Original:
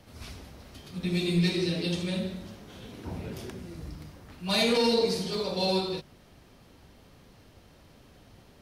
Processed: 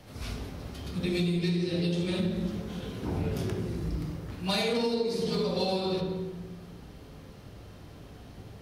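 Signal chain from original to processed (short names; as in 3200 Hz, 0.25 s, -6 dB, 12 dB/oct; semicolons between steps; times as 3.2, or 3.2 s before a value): on a send at -1.5 dB: reverb RT60 1.1 s, pre-delay 3 ms; on the sum: compressor 16:1, threshold -27 dBFS, peak gain reduction 14.5 dB; gain +2.5 dB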